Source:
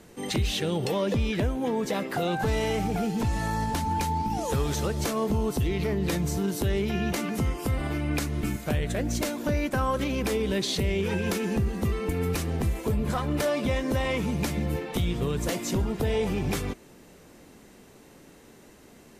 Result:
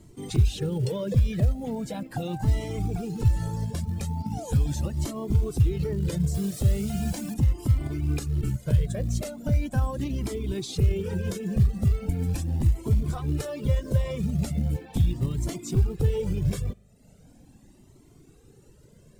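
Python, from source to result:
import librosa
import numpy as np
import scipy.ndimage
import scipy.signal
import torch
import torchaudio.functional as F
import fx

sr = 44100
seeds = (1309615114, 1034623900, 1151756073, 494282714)

y = fx.highpass(x, sr, hz=75.0, slope=12, at=(3.48, 4.5))
y = fx.quant_dither(y, sr, seeds[0], bits=6, dither='triangular', at=(6.34, 7.34))
y = fx.tilt_eq(y, sr, slope=-1.5)
y = fx.rev_spring(y, sr, rt60_s=1.3, pass_ms=(39,), chirp_ms=55, drr_db=15.5)
y = fx.dereverb_blind(y, sr, rt60_s=0.74)
y = fx.graphic_eq(y, sr, hz=(125, 1000, 2000, 8000), db=(8, -5, -5, 7))
y = fx.quant_float(y, sr, bits=4)
y = fx.notch(y, sr, hz=6100.0, q=27.0)
y = fx.comb_cascade(y, sr, direction='rising', hz=0.39)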